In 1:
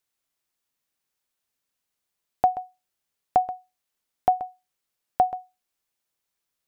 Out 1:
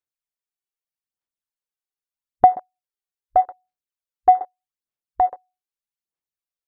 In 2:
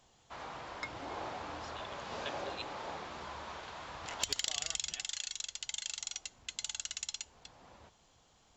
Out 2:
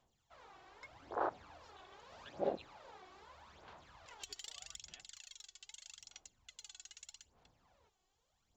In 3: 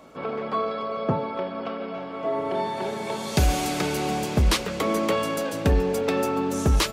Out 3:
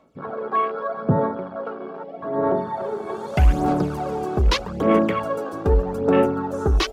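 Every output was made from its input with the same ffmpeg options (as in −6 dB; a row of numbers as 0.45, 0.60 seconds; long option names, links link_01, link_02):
-af "aphaser=in_gain=1:out_gain=1:delay=2.7:decay=0.63:speed=0.81:type=sinusoidal,afwtdn=0.0447"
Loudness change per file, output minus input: +6.5, −7.5, +3.0 LU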